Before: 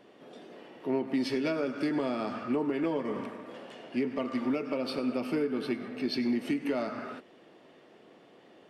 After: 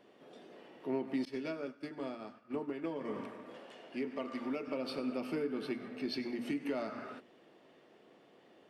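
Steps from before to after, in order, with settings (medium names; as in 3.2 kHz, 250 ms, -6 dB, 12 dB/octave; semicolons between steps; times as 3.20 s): hum notches 60/120/180/240/300 Hz; 1.25–3.01 s: expander -25 dBFS; 3.58–4.68 s: bass shelf 130 Hz -11.5 dB; trim -5.5 dB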